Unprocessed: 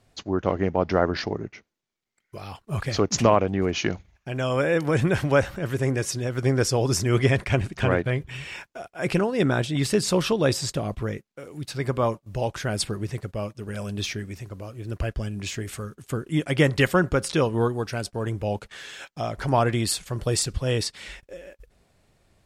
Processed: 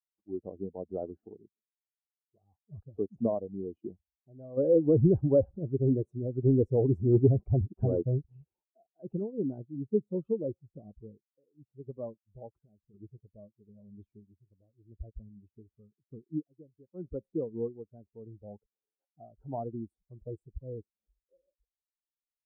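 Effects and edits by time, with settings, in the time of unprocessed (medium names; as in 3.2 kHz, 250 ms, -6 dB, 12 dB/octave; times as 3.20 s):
4.57–8.44 s: waveshaping leveller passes 2
12.48–12.94 s: compression 10:1, threshold -31 dBFS
16.35–17.08 s: dip -13 dB, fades 0.15 s
whole clip: expander on every frequency bin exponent 2; inverse Chebyshev low-pass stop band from 1.8 kHz, stop band 60 dB; bass shelf 110 Hz -11 dB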